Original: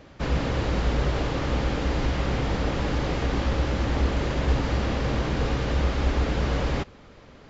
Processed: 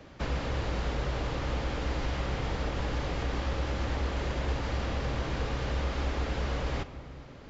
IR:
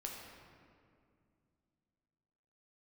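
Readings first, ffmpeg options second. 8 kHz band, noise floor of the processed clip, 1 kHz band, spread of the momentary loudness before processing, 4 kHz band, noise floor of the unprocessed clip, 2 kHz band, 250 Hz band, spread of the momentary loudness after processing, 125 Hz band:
n/a, -48 dBFS, -5.5 dB, 2 LU, -5.0 dB, -49 dBFS, -5.0 dB, -9.0 dB, 1 LU, -6.5 dB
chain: -filter_complex "[0:a]asplit=2[a][b];[1:a]atrim=start_sample=2205,adelay=46[c];[b][c]afir=irnorm=-1:irlink=0,volume=-13dB[d];[a][d]amix=inputs=2:normalize=0,acrossover=split=110|430[e][f][g];[e]acompressor=threshold=-29dB:ratio=4[h];[f]acompressor=threshold=-39dB:ratio=4[i];[g]acompressor=threshold=-34dB:ratio=4[j];[h][i][j]amix=inputs=3:normalize=0,volume=-1.5dB"

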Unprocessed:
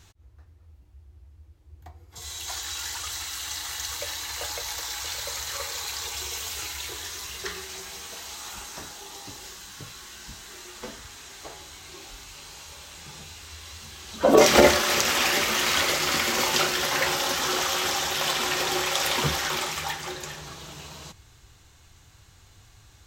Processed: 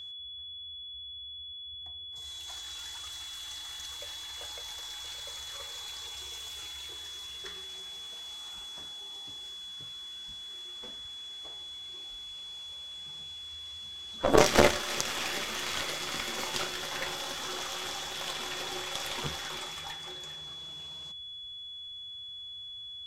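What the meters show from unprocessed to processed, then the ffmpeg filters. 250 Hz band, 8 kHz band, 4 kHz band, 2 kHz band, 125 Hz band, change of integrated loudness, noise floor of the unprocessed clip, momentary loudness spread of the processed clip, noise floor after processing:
-7.0 dB, -10.5 dB, -5.5 dB, -9.5 dB, -6.0 dB, -10.0 dB, -55 dBFS, 8 LU, -44 dBFS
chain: -af "aeval=exprs='0.708*(cos(1*acos(clip(val(0)/0.708,-1,1)))-cos(1*PI/2))+0.141*(cos(2*acos(clip(val(0)/0.708,-1,1)))-cos(2*PI/2))+0.158*(cos(3*acos(clip(val(0)/0.708,-1,1)))-cos(3*PI/2))+0.0126*(cos(6*acos(clip(val(0)/0.708,-1,1)))-cos(6*PI/2))+0.00398*(cos(7*acos(clip(val(0)/0.708,-1,1)))-cos(7*PI/2))':c=same,lowpass=12k,aeval=exprs='val(0)+0.0112*sin(2*PI*3400*n/s)':c=same,volume=-1.5dB"

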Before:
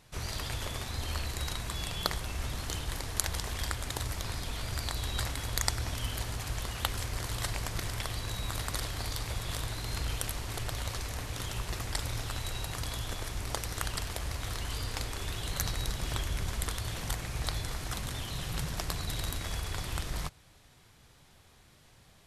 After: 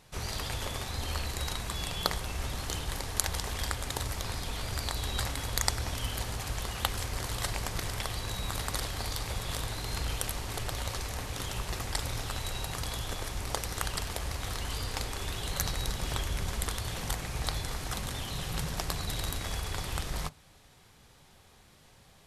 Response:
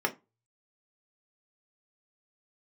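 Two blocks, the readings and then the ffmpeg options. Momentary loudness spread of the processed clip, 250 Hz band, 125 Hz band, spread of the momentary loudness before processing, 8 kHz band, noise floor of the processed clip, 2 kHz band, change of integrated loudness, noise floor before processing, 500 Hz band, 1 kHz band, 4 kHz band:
4 LU, +1.5 dB, 0.0 dB, 3 LU, +1.5 dB, -59 dBFS, +1.0 dB, +1.0 dB, -60 dBFS, +2.5 dB, +2.5 dB, +1.5 dB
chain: -filter_complex "[0:a]equalizer=f=380:w=3.7:g=-3,asplit=2[a][b];[b]lowpass=1k[c];[1:a]atrim=start_sample=2205[d];[c][d]afir=irnorm=-1:irlink=0,volume=-17.5dB[e];[a][e]amix=inputs=2:normalize=0,volume=1.5dB"

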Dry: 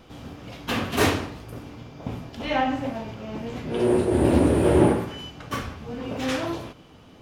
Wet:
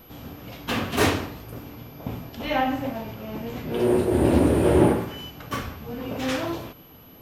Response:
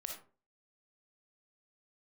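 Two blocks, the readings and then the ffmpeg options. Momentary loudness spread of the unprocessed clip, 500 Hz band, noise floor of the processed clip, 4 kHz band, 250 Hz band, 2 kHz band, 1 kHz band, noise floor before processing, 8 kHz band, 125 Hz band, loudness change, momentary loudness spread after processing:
20 LU, 0.0 dB, -48 dBFS, 0.0 dB, 0.0 dB, 0.0 dB, 0.0 dB, -50 dBFS, 0.0 dB, 0.0 dB, 0.0 dB, 20 LU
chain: -af "aeval=exprs='val(0)+0.00282*sin(2*PI*12000*n/s)':c=same"

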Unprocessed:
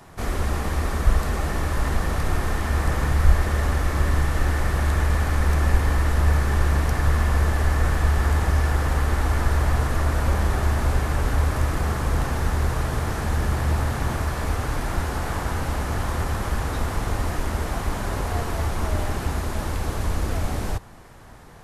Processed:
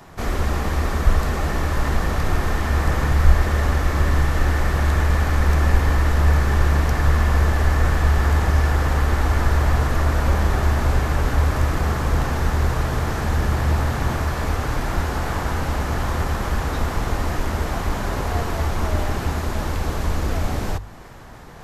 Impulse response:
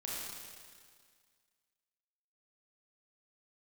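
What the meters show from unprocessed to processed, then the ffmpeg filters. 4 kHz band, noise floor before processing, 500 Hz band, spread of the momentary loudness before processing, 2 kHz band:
+3.0 dB, -30 dBFS, +3.0 dB, 6 LU, +3.0 dB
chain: -af "equalizer=f=9.7k:w=2.4:g=-7.5,bandreject=f=50:t=h:w=6,bandreject=f=100:t=h:w=6,areverse,acompressor=mode=upward:threshold=-38dB:ratio=2.5,areverse,volume=3dB"

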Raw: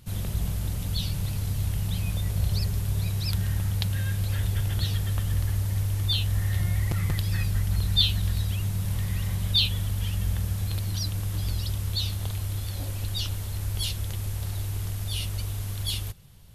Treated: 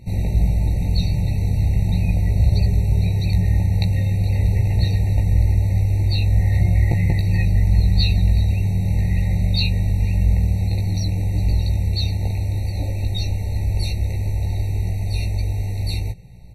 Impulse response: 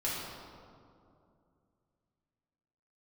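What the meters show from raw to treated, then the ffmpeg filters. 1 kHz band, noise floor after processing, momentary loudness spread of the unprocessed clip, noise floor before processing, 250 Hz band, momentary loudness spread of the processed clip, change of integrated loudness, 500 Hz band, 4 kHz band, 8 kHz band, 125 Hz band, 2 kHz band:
+6.0 dB, -24 dBFS, 7 LU, -32 dBFS, +11.0 dB, 6 LU, +8.0 dB, +10.0 dB, -2.5 dB, n/a, +8.5 dB, +4.5 dB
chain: -filter_complex "[0:a]aemphasis=mode=reproduction:type=75kf,asplit=2[a][b];[b]adelay=17,volume=-4dB[c];[a][c]amix=inputs=2:normalize=0,afftfilt=real='re*eq(mod(floor(b*sr/1024/920),2),0)':imag='im*eq(mod(floor(b*sr/1024/920),2),0)':win_size=1024:overlap=0.75,volume=8.5dB"

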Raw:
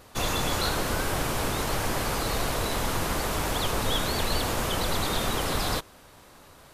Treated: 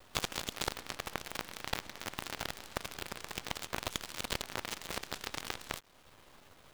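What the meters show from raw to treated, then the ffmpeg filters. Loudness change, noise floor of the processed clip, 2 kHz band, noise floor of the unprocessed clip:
-12.0 dB, -61 dBFS, -9.5 dB, -52 dBFS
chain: -af "lowpass=4.2k,equalizer=f=3.2k:w=4.1:g=6,acompressor=threshold=-41dB:ratio=3,aeval=exprs='0.0501*(cos(1*acos(clip(val(0)/0.0501,-1,1)))-cos(1*PI/2))+0.02*(cos(3*acos(clip(val(0)/0.0501,-1,1)))-cos(3*PI/2))':c=same,acrusher=bits=9:dc=4:mix=0:aa=0.000001,aeval=exprs='0.0562*(cos(1*acos(clip(val(0)/0.0562,-1,1)))-cos(1*PI/2))+0.0141*(cos(4*acos(clip(val(0)/0.0562,-1,1)))-cos(4*PI/2))+0.00447*(cos(8*acos(clip(val(0)/0.0562,-1,1)))-cos(8*PI/2))':c=same,volume=11.5dB"

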